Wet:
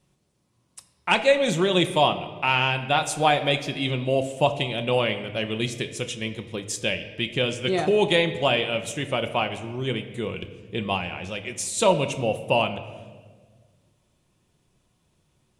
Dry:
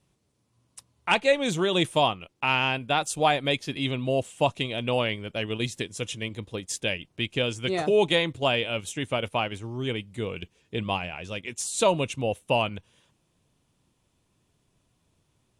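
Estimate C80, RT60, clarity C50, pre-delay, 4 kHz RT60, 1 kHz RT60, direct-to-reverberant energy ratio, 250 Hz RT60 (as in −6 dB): 13.0 dB, 1.5 s, 11.5 dB, 5 ms, 1.1 s, 1.3 s, 7.0 dB, 1.9 s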